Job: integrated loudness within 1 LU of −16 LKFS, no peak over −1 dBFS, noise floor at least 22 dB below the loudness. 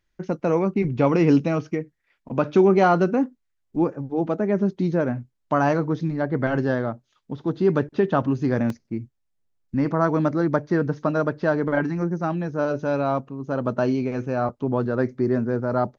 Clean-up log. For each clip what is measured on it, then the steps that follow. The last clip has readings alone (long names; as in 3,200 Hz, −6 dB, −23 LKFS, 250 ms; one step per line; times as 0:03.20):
number of dropouts 1; longest dropout 2.0 ms; integrated loudness −23.0 LKFS; sample peak −6.5 dBFS; target loudness −16.0 LKFS
→ repair the gap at 0:08.70, 2 ms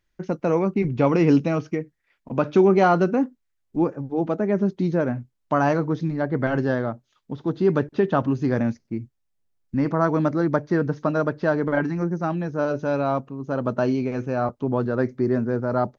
number of dropouts 0; integrated loudness −23.0 LKFS; sample peak −6.5 dBFS; target loudness −16.0 LKFS
→ level +7 dB
brickwall limiter −1 dBFS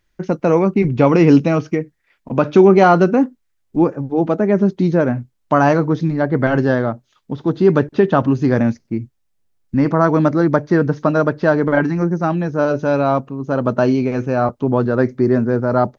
integrated loudness −16.5 LKFS; sample peak −1.0 dBFS; background noise floor −67 dBFS